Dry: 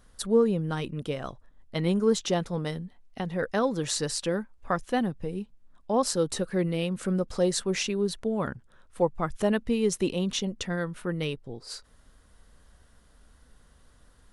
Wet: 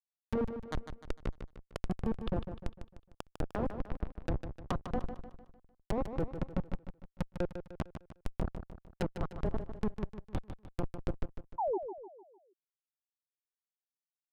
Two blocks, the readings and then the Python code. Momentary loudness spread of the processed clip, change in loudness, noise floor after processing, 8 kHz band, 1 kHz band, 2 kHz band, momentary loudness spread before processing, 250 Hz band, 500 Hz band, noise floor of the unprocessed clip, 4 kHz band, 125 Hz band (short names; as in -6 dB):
13 LU, -11.0 dB, under -85 dBFS, -27.5 dB, -8.0 dB, -14.0 dB, 12 LU, -11.0 dB, -12.5 dB, -59 dBFS, -20.5 dB, -7.0 dB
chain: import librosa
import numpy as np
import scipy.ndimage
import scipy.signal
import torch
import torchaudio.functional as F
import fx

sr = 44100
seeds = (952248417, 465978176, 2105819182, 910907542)

p1 = scipy.signal.sosfilt(scipy.signal.cheby1(6, 9, 4900.0, 'lowpass', fs=sr, output='sos'), x)
p2 = fx.hum_notches(p1, sr, base_hz=50, count=5)
p3 = fx.dynamic_eq(p2, sr, hz=290.0, q=5.9, threshold_db=-57.0, ratio=4.0, max_db=-4)
p4 = fx.rider(p3, sr, range_db=4, speed_s=0.5)
p5 = p3 + F.gain(torch.from_numpy(p4), -0.5).numpy()
p6 = fx.schmitt(p5, sr, flips_db=-22.0)
p7 = fx.env_lowpass_down(p6, sr, base_hz=820.0, full_db=-33.0)
p8 = fx.spec_paint(p7, sr, seeds[0], shape='fall', start_s=11.58, length_s=0.2, low_hz=340.0, high_hz=1000.0, level_db=-34.0)
p9 = p8 + fx.echo_feedback(p8, sr, ms=151, feedback_pct=45, wet_db=-9.0, dry=0)
y = F.gain(torch.from_numpy(p9), 2.5).numpy()